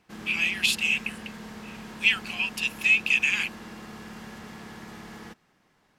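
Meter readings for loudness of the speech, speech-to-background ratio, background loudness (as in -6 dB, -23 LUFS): -23.5 LUFS, 18.5 dB, -42.0 LUFS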